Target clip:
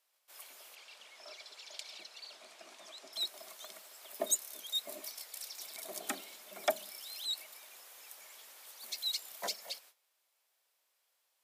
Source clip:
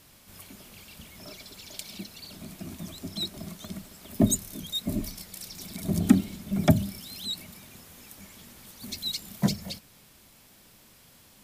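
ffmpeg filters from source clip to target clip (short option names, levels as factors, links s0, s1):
-filter_complex "[0:a]asettb=1/sr,asplit=3[s0][s1][s2];[s0]atrim=end=0.754[s3];[s1]atrim=start=0.75:end=3.13,asetpts=PTS-STARTPTS,afade=t=in:d=0.004:c=qsin,afade=t=out:st=2.376:d=0.004:c=qsin,lowpass=6300[s4];[s2]atrim=start=3.126[s5];[s3][s4]acrossfade=d=0.004:c1=hsin:c2=qsin[s6];[s6][s5]acrossfade=d=0.004:c1=qsin:c2=hsin,agate=range=0.126:threshold=0.00251:ratio=16:detection=peak,highpass=f=530:w=0.5412,highpass=f=530:w=1.3066,volume=0.668"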